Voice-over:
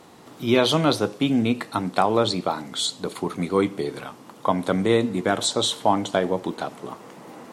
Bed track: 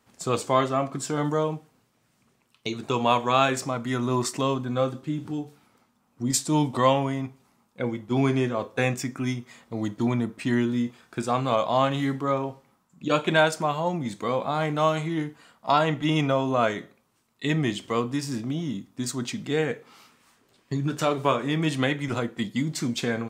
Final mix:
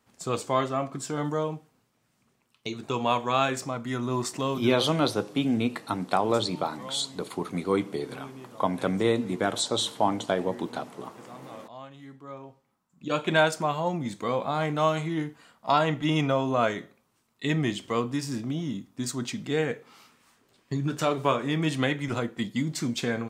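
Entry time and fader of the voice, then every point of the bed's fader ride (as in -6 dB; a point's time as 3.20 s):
4.15 s, -4.5 dB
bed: 4.69 s -3.5 dB
4.99 s -21.5 dB
11.96 s -21.5 dB
13.36 s -1.5 dB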